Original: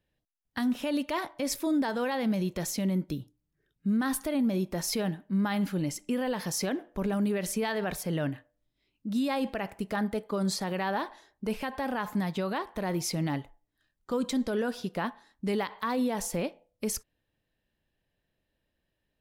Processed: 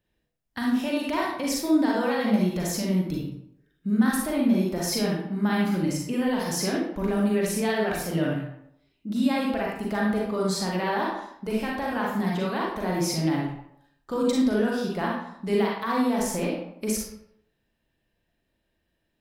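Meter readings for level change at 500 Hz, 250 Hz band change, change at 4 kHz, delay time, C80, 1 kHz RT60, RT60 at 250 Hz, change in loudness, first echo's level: +5.5 dB, +5.5 dB, +4.5 dB, no echo, 5.5 dB, 0.70 s, 0.70 s, +5.0 dB, no echo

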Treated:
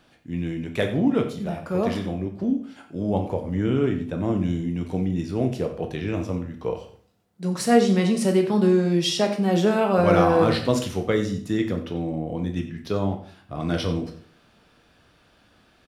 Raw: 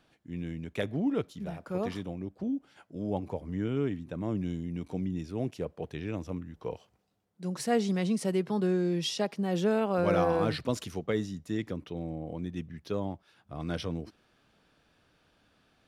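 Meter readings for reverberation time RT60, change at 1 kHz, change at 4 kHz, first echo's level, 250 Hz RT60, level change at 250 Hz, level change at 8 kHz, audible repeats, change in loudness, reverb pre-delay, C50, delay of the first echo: 0.50 s, +9.5 dB, +9.0 dB, -15.0 dB, 0.55 s, +9.0 dB, +8.5 dB, 1, +9.0 dB, 12 ms, 9.0 dB, 91 ms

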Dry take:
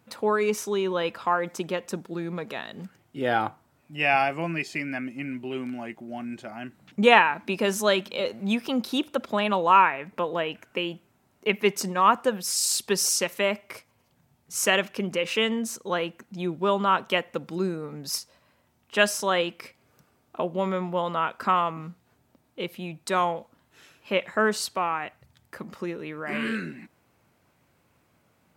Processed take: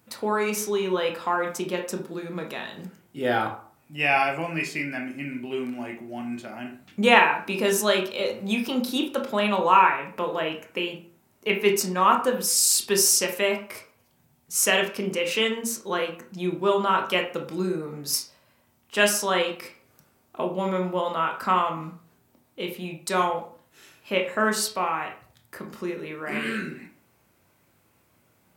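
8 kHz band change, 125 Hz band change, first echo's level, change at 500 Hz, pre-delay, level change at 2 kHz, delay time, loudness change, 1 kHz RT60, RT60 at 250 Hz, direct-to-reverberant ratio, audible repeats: +5.0 dB, 0.0 dB, no echo, +1.0 dB, 17 ms, +1.5 dB, no echo, +1.5 dB, 0.45 s, 0.45 s, 2.0 dB, no echo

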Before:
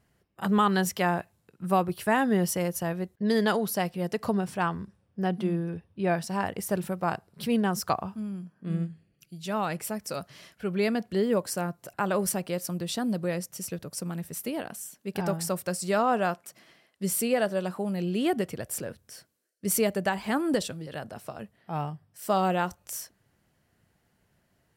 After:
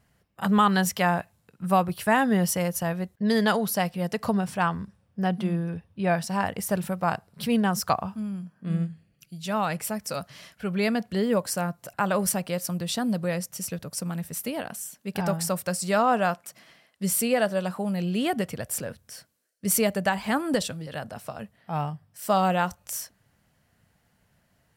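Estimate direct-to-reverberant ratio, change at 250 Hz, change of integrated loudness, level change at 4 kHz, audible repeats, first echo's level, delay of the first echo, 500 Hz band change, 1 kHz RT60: no reverb, +2.0 dB, +2.5 dB, +3.5 dB, no echo, no echo, no echo, +1.0 dB, no reverb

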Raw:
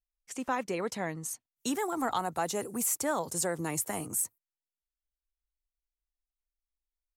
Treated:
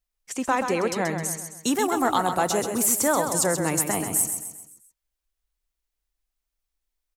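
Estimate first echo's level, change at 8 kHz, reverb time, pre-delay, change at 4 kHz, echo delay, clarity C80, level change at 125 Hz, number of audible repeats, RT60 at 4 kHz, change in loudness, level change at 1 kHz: -7.0 dB, +9.0 dB, no reverb, no reverb, +9.0 dB, 131 ms, no reverb, +9.0 dB, 5, no reverb, +9.0 dB, +9.0 dB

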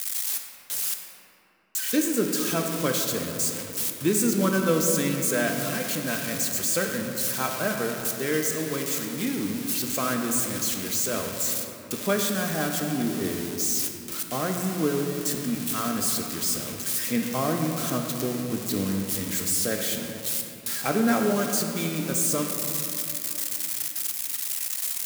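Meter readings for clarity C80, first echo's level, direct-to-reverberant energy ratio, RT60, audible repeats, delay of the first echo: 5.0 dB, no echo, 2.5 dB, 3.0 s, no echo, no echo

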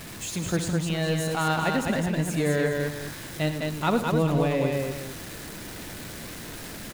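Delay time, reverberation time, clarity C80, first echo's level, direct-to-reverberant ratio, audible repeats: 67 ms, no reverb, no reverb, -13.0 dB, no reverb, 4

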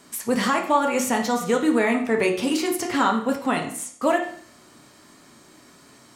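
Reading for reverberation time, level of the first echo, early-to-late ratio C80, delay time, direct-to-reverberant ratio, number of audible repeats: 0.55 s, no echo, 11.5 dB, no echo, 1.5 dB, no echo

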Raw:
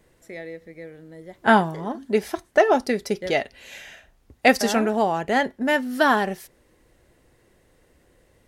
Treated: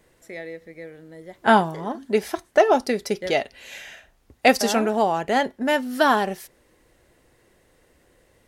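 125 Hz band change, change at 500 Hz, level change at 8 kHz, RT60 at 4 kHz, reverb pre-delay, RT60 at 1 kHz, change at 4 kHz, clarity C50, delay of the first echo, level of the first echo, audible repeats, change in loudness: -1.5 dB, +0.5 dB, +2.0 dB, no reverb, no reverb, no reverb, +1.5 dB, no reverb, no echo, no echo, no echo, 0.0 dB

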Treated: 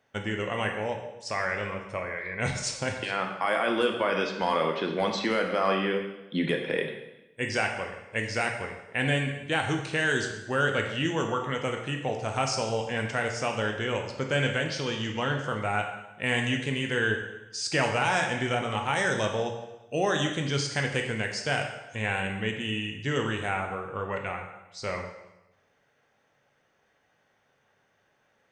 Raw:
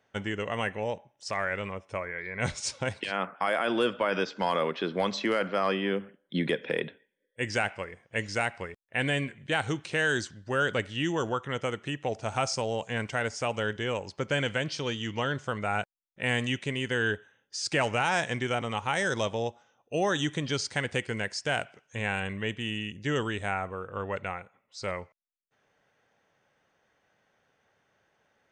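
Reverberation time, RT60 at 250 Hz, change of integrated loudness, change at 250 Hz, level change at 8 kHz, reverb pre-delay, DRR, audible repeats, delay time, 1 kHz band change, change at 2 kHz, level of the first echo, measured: 0.95 s, 1.0 s, +1.5 dB, +1.5 dB, +1.5 dB, 5 ms, 2.5 dB, no echo, no echo, +2.0 dB, +2.0 dB, no echo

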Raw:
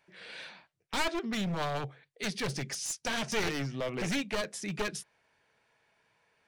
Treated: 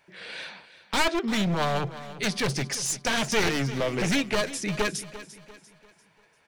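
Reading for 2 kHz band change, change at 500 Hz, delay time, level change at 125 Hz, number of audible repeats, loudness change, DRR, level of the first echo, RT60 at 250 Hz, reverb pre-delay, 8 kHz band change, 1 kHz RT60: +7.0 dB, +7.0 dB, 345 ms, +7.0 dB, 3, +7.0 dB, no reverb, -15.0 dB, no reverb, no reverb, +7.0 dB, no reverb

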